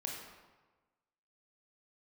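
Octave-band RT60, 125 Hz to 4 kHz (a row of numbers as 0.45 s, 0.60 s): 1.3 s, 1.3 s, 1.3 s, 1.3 s, 1.1 s, 0.85 s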